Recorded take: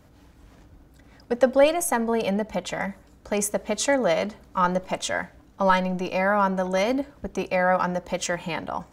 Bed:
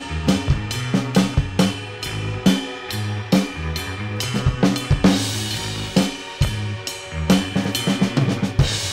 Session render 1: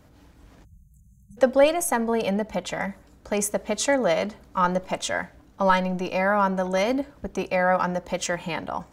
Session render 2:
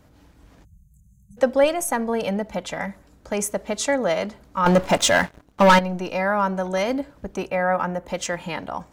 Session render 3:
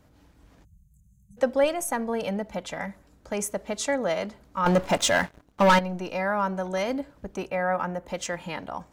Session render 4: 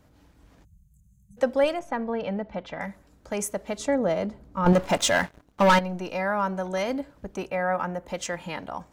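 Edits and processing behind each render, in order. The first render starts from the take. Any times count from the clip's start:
0.65–1.37 spectral delete 200–6100 Hz
4.66–5.79 sample leveller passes 3; 7.48–8.08 bell 4900 Hz -12 dB 0.87 oct
gain -4.5 dB
1.79–2.81 air absorption 230 m; 3.78–4.73 tilt shelf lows +6.5 dB, about 780 Hz

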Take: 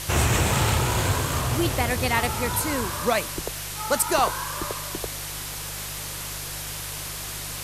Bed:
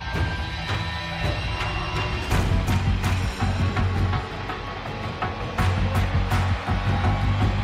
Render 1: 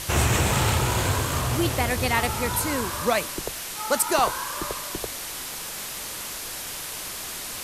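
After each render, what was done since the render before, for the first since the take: de-hum 50 Hz, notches 3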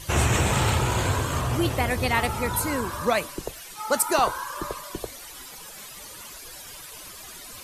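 denoiser 13 dB, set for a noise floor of -35 dBFS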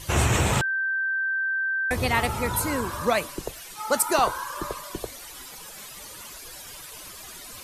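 0.61–1.91 bleep 1560 Hz -23 dBFS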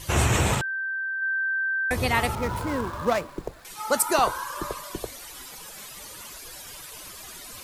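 0.55–1.22 gain -3.5 dB; 2.35–3.65 median filter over 15 samples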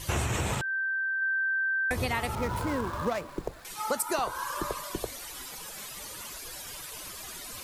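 compressor 6:1, threshold -26 dBFS, peak gain reduction 9.5 dB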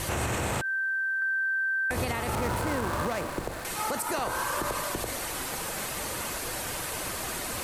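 per-bin compression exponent 0.6; limiter -20 dBFS, peak gain reduction 8 dB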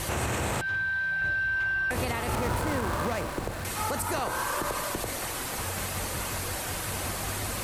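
add bed -16.5 dB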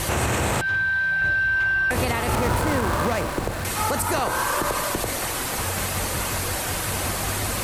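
gain +6.5 dB

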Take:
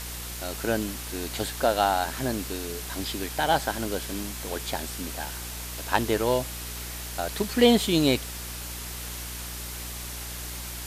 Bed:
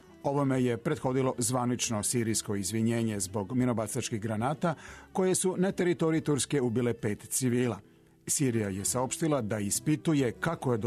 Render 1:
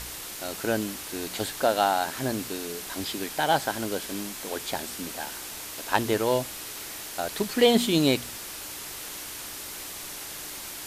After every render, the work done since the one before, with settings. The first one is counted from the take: de-hum 60 Hz, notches 4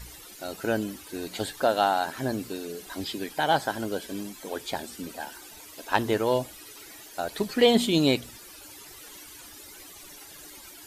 denoiser 14 dB, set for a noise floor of -39 dBFS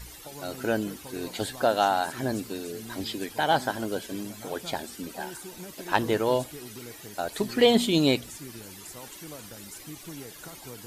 add bed -15.5 dB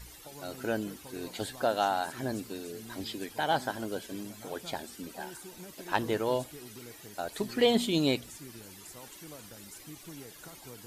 gain -5 dB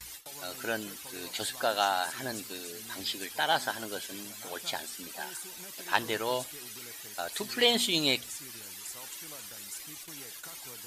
gate with hold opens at -39 dBFS; tilt shelf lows -7.5 dB, about 810 Hz

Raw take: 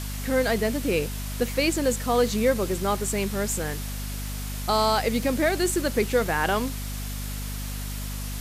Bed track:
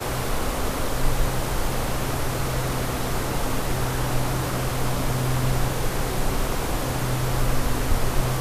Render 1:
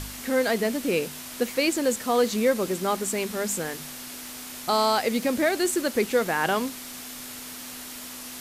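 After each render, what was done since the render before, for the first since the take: de-hum 50 Hz, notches 4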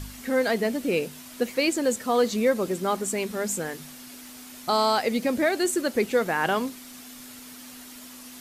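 denoiser 7 dB, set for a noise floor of -39 dBFS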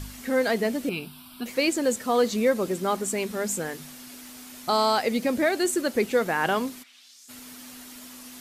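0.89–1.46 fixed phaser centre 1900 Hz, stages 6; 6.82–7.28 band-pass 2200 Hz -> 7200 Hz, Q 2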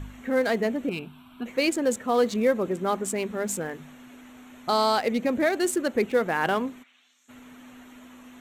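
Wiener smoothing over 9 samples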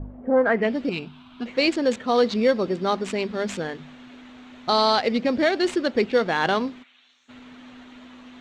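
in parallel at -9 dB: sample-rate reducer 5000 Hz, jitter 0%; on the sum: low-pass sweep 590 Hz -> 4100 Hz, 0.25–0.76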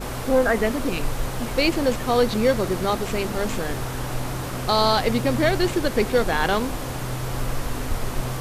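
add bed track -4 dB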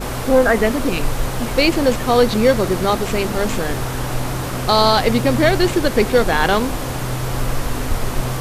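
gain +5.5 dB; limiter -2 dBFS, peak gain reduction 1 dB

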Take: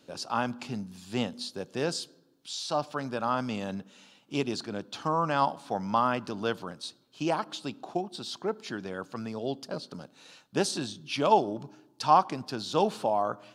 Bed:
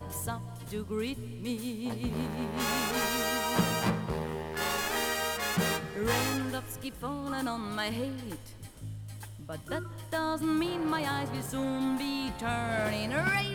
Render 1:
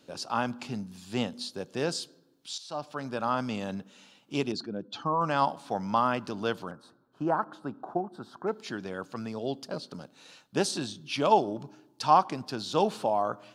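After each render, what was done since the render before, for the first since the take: 2.58–3.2 fade in, from -12.5 dB; 4.52–5.21 spectral contrast raised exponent 1.6; 6.71–8.47 EQ curve 550 Hz 0 dB, 1500 Hz +5 dB, 2300 Hz -18 dB, 6600 Hz -21 dB, 12000 Hz -12 dB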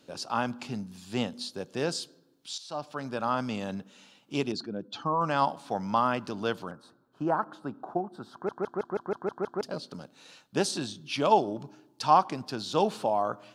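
8.33 stutter in place 0.16 s, 8 plays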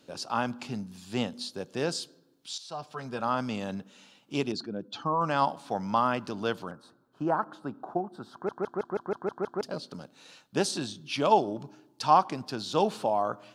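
2.7–3.22 notch comb 290 Hz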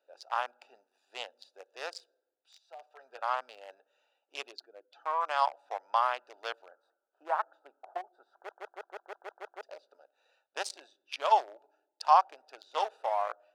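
Wiener smoothing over 41 samples; inverse Chebyshev high-pass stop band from 190 Hz, stop band 60 dB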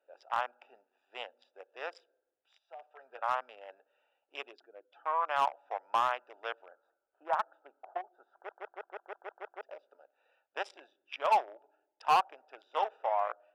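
polynomial smoothing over 25 samples; hard clip -20 dBFS, distortion -10 dB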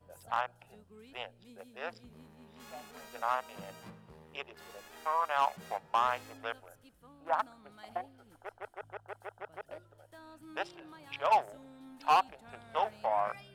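add bed -22 dB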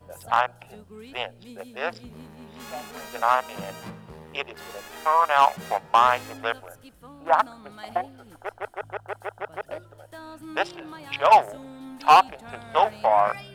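gain +11.5 dB

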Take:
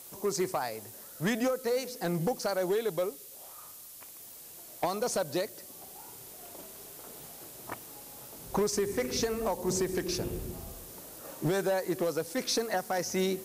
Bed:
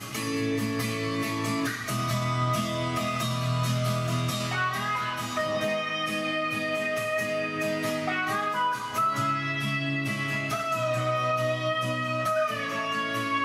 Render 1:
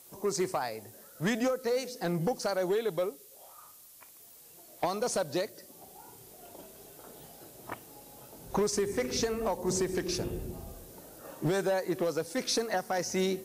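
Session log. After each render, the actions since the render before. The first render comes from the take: noise print and reduce 6 dB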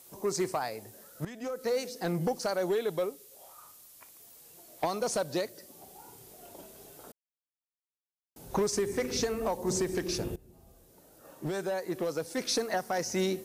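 1.25–1.65 fade in quadratic, from -16.5 dB; 7.12–8.36 mute; 10.36–12.54 fade in linear, from -21 dB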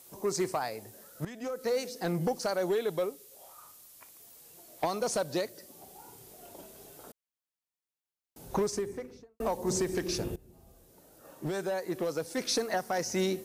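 8.45–9.4 studio fade out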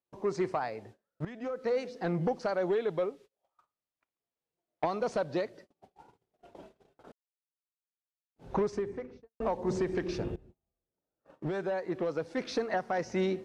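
LPF 2700 Hz 12 dB/oct; gate -51 dBFS, range -31 dB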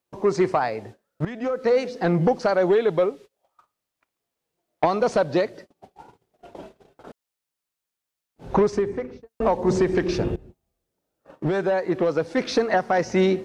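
gain +10.5 dB

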